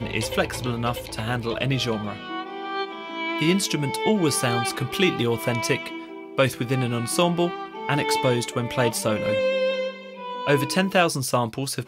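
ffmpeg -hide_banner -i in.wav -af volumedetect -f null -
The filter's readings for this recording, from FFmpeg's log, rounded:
mean_volume: -24.3 dB
max_volume: -5.5 dB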